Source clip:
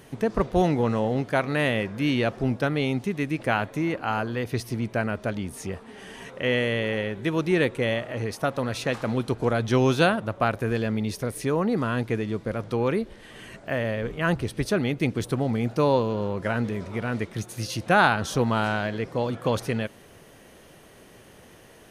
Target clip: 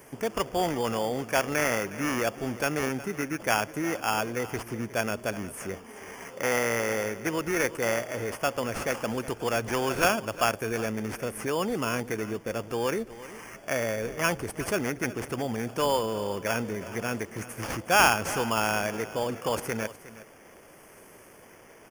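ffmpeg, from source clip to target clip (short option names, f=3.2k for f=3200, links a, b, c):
-filter_complex "[0:a]bass=f=250:g=-8,treble=f=4k:g=5,acrossover=split=610|6500[a][b][c];[a]alimiter=level_in=1dB:limit=-24dB:level=0:latency=1,volume=-1dB[d];[b]acrusher=samples=11:mix=1:aa=0.000001[e];[c]tremolo=f=0.76:d=0.64[f];[d][e][f]amix=inputs=3:normalize=0,aecho=1:1:363:0.158"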